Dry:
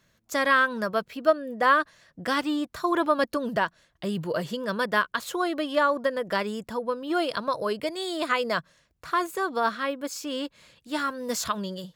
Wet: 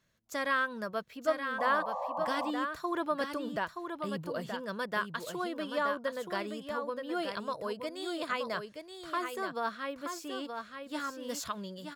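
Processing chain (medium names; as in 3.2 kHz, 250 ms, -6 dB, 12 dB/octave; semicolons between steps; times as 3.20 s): delay 925 ms -6.5 dB; painted sound noise, 1.58–2.51 s, 500–1200 Hz -27 dBFS; trim -9 dB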